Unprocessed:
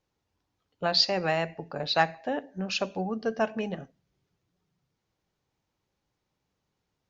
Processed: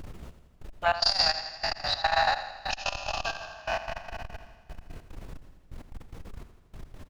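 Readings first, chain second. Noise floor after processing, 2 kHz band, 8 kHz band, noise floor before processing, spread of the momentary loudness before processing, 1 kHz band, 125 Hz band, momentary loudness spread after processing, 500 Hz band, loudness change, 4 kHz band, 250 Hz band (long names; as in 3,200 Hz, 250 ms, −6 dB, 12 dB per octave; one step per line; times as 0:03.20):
−57 dBFS, +2.5 dB, can't be measured, −82 dBFS, 11 LU, +3.0 dB, −4.5 dB, 23 LU, −4.0 dB, +0.5 dB, +2.0 dB, −15.0 dB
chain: peak hold with a decay on every bin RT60 2.79 s
elliptic band-stop filter 100–710 Hz
dynamic equaliser 3,800 Hz, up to −5 dB, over −34 dBFS, Q 1.1
brickwall limiter −15.5 dBFS, peak gain reduction 5.5 dB
transient designer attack +4 dB, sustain −2 dB
background noise brown −40 dBFS
gate pattern "xxx...x.x." 147 BPM −24 dB
on a send: repeating echo 82 ms, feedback 58%, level −13 dB
on the sum: saturating transformer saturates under 410 Hz
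level +3.5 dB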